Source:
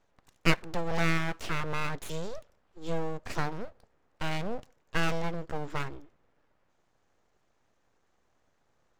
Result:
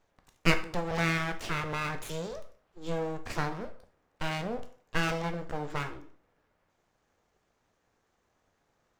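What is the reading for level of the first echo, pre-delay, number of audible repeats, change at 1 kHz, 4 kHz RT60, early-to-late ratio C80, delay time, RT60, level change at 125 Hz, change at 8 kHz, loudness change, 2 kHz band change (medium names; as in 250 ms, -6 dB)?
no echo, 12 ms, no echo, +0.5 dB, 0.40 s, 17.0 dB, no echo, 0.45 s, -0.5 dB, +0.5 dB, +0.5 dB, +1.0 dB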